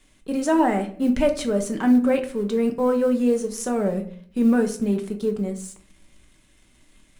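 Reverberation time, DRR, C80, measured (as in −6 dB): 0.55 s, 4.0 dB, 16.0 dB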